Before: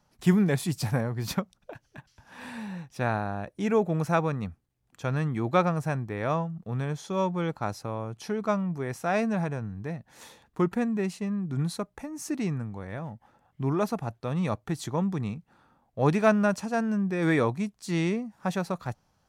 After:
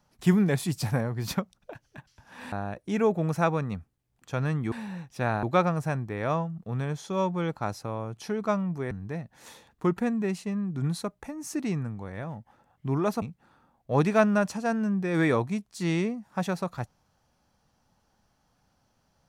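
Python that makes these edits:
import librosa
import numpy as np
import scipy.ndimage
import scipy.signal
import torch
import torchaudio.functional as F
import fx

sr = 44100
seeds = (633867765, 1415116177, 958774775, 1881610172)

y = fx.edit(x, sr, fx.move(start_s=2.52, length_s=0.71, to_s=5.43),
    fx.cut(start_s=8.91, length_s=0.75),
    fx.cut(start_s=13.97, length_s=1.33), tone=tone)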